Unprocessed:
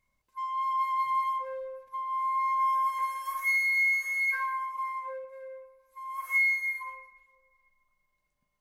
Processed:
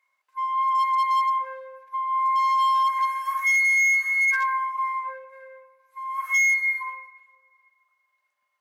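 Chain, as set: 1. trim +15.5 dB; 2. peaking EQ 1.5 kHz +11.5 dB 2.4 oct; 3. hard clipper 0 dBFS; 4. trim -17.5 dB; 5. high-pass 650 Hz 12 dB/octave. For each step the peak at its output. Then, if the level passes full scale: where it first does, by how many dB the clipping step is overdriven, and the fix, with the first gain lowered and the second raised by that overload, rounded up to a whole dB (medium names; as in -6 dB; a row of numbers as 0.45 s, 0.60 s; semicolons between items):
-3.0 dBFS, +6.5 dBFS, 0.0 dBFS, -17.5 dBFS, -14.5 dBFS; step 2, 6.5 dB; step 1 +8.5 dB, step 4 -10.5 dB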